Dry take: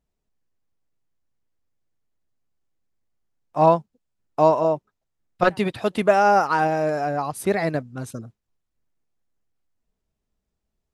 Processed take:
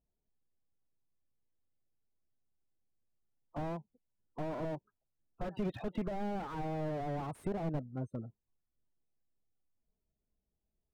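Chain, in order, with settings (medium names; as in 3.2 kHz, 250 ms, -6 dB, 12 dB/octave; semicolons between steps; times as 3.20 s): loudest bins only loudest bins 32; 7.49–8.19 s: Savitzky-Golay filter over 65 samples; compression 6:1, threshold -20 dBFS, peak gain reduction 9.5 dB; slew-rate limiter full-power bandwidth 17 Hz; trim -6.5 dB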